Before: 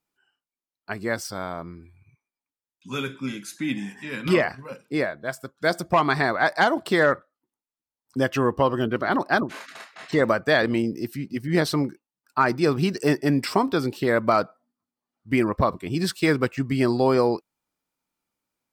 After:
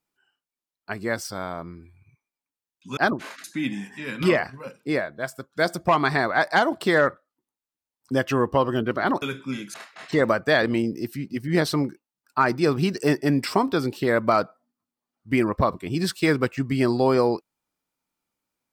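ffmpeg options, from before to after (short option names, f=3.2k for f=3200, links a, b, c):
-filter_complex "[0:a]asplit=5[a][b][c][d][e];[a]atrim=end=2.972[f];[b]atrim=start=9.268:end=9.742[g];[c]atrim=start=3.488:end=9.272[h];[d]atrim=start=2.968:end=3.492[i];[e]atrim=start=9.738[j];[f][g]acrossfade=d=0.004:c1=hsin:c2=hsin[k];[k][h]acrossfade=d=0.004:c1=hsin:c2=hsin[l];[l][i]acrossfade=d=0.004:c1=hsin:c2=hsin[m];[m][j]acrossfade=d=0.004:c1=hsin:c2=hsin"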